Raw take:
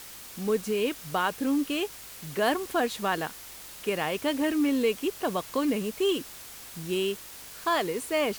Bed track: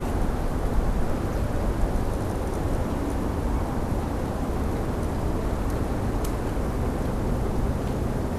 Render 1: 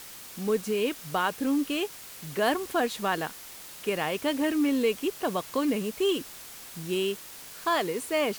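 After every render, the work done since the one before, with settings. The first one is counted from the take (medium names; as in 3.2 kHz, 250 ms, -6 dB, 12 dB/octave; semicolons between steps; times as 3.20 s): de-hum 50 Hz, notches 2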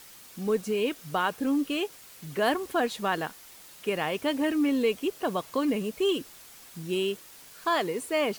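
noise reduction 6 dB, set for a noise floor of -45 dBFS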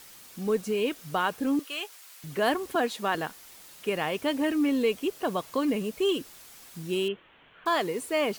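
1.59–2.24 s: high-pass 800 Hz; 2.75–3.15 s: high-pass 190 Hz 24 dB/octave; 7.08–7.66 s: elliptic low-pass 3.2 kHz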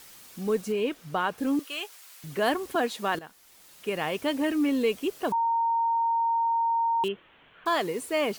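0.72–1.38 s: treble shelf 4.2 kHz -8.5 dB; 3.19–4.08 s: fade in, from -14 dB; 5.32–7.04 s: bleep 922 Hz -22 dBFS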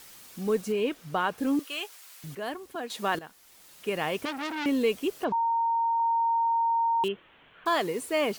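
2.35–2.90 s: gain -9.5 dB; 4.25–4.66 s: transformer saturation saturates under 3 kHz; 5.24–6.00 s: distance through air 190 m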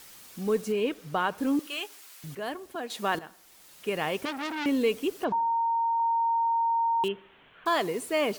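feedback echo behind a low-pass 72 ms, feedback 51%, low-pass 1.9 kHz, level -23 dB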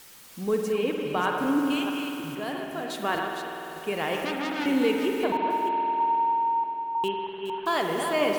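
chunks repeated in reverse 316 ms, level -6.5 dB; spring tank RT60 3.8 s, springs 49 ms, chirp 35 ms, DRR 2 dB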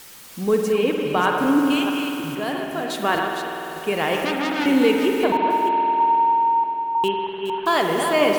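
trim +6.5 dB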